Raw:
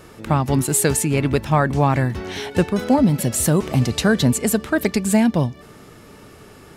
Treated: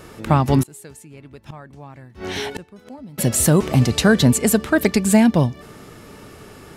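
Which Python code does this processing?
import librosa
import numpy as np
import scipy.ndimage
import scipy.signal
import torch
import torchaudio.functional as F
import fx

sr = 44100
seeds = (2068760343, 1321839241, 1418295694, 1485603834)

y = fx.gate_flip(x, sr, shuts_db=-16.0, range_db=-25, at=(0.62, 3.18))
y = F.gain(torch.from_numpy(y), 2.5).numpy()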